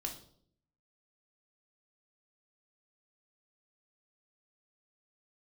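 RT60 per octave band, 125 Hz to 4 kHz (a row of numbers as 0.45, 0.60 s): 0.90, 0.85, 0.70, 0.55, 0.40, 0.50 s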